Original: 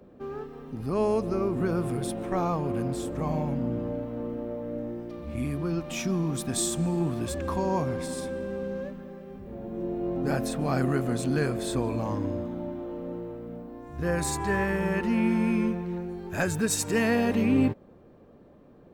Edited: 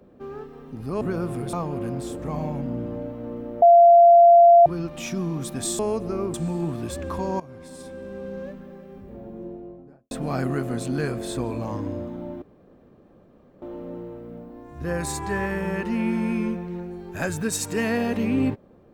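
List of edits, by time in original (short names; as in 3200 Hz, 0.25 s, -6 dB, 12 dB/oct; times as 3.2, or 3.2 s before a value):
1.01–1.56 move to 6.72
2.08–2.46 cut
4.55–5.59 bleep 688 Hz -8.5 dBFS
7.78–8.84 fade in, from -18 dB
9.36–10.49 studio fade out
12.8 insert room tone 1.20 s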